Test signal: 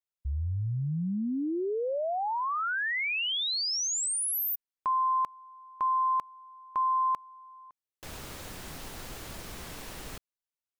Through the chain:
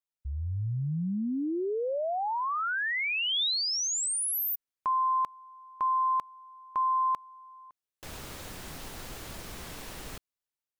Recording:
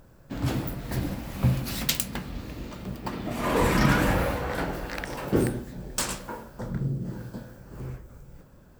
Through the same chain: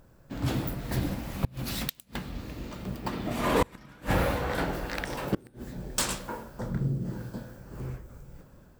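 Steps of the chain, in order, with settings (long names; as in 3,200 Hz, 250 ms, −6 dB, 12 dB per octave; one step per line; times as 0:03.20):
dynamic equaliser 3,600 Hz, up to +3 dB, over −51 dBFS, Q 3.4
automatic gain control gain up to 3.5 dB
gate with flip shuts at −9 dBFS, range −30 dB
level −3.5 dB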